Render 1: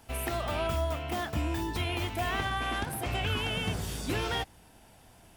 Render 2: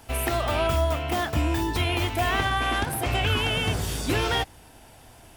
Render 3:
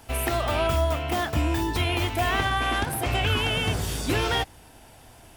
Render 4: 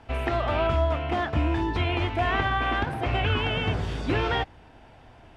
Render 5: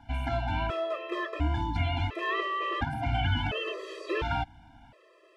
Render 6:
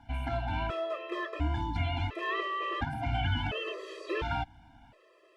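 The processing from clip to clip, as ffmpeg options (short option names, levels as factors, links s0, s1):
-af "equalizer=f=190:t=o:w=0.2:g=-11.5,volume=2.24"
-af anull
-af "lowpass=2700"
-af "afftfilt=real='re*gt(sin(2*PI*0.71*pts/sr)*(1-2*mod(floor(b*sr/1024/340),2)),0)':imag='im*gt(sin(2*PI*0.71*pts/sr)*(1-2*mod(floor(b*sr/1024/340),2)),0)':win_size=1024:overlap=0.75,volume=0.841"
-af "volume=0.75" -ar 48000 -c:a libopus -b:a 48k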